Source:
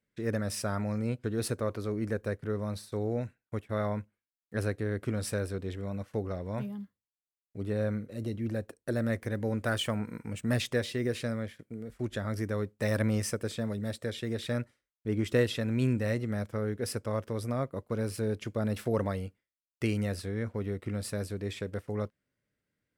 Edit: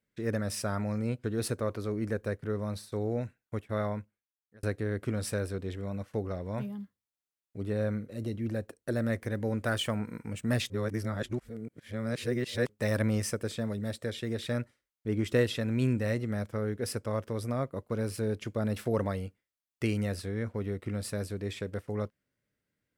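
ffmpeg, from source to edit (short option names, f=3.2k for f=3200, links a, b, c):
-filter_complex "[0:a]asplit=4[a][b][c][d];[a]atrim=end=4.63,asetpts=PTS-STARTPTS,afade=t=out:st=3.79:d=0.84[e];[b]atrim=start=4.63:end=10.702,asetpts=PTS-STARTPTS,afade=t=in:d=0.004:c=hsin[f];[c]atrim=start=10.698:end=12.692,asetpts=PTS-STARTPTS,areverse[g];[d]atrim=start=12.688[h];[e][f]concat=n=2:v=0:a=1[i];[i][g]acrossfade=d=0.004:c1=hsin:c2=hsin[j];[j][h]acrossfade=d=0.004:c1=hsin:c2=hsin"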